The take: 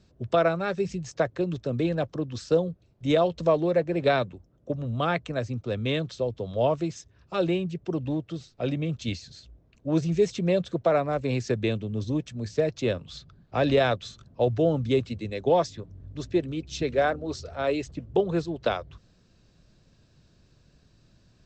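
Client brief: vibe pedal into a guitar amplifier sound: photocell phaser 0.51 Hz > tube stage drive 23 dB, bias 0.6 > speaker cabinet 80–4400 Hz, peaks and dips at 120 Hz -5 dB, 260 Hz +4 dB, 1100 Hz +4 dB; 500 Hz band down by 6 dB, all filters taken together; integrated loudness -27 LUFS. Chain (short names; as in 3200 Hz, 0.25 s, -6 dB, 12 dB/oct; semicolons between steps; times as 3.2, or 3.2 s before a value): bell 500 Hz -8 dB; photocell phaser 0.51 Hz; tube stage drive 23 dB, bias 0.6; speaker cabinet 80–4400 Hz, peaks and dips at 120 Hz -5 dB, 260 Hz +4 dB, 1100 Hz +4 dB; gain +10 dB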